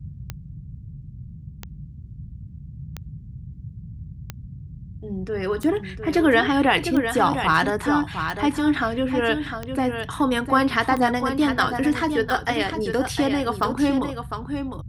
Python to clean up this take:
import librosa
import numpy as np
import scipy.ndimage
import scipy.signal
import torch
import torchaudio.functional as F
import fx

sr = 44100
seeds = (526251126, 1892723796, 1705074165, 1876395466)

y = fx.fix_declick_ar(x, sr, threshold=10.0)
y = fx.noise_reduce(y, sr, print_start_s=1.68, print_end_s=2.18, reduce_db=28.0)
y = fx.fix_echo_inverse(y, sr, delay_ms=704, level_db=-8.0)